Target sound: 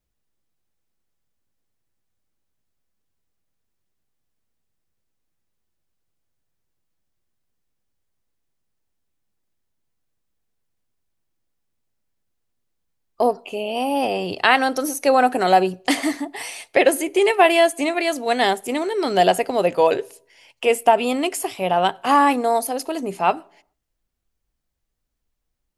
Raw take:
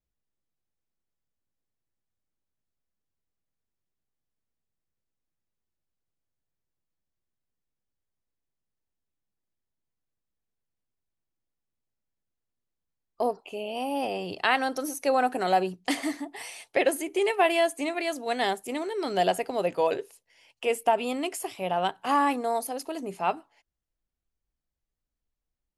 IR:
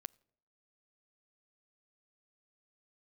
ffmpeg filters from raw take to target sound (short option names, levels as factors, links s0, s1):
-filter_complex "[0:a]asplit=2[s0][s1];[1:a]atrim=start_sample=2205[s2];[s1][s2]afir=irnorm=-1:irlink=0,volume=8.41[s3];[s0][s3]amix=inputs=2:normalize=0,volume=0.473"